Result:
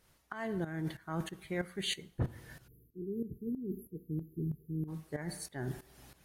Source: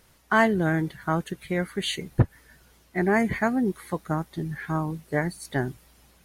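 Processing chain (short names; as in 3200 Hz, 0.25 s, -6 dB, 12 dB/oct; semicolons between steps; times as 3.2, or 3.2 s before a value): two-slope reverb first 0.54 s, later 1.9 s, from -16 dB, DRR 15 dB; reverse; compressor 6:1, threshold -33 dBFS, peak gain reduction 18.5 dB; reverse; spectral delete 2.68–4.88, 490–11000 Hz; tremolo saw up 3.1 Hz, depth 80%; gain +2 dB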